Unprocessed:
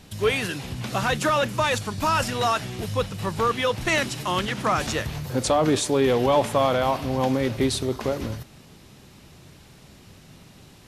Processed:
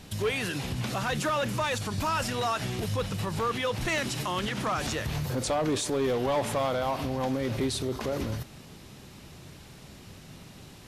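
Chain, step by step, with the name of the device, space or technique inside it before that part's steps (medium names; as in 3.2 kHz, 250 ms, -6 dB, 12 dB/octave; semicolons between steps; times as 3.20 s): clipper into limiter (hard clipper -16 dBFS, distortion -17 dB; peak limiter -23 dBFS, peak gain reduction 7 dB); trim +1 dB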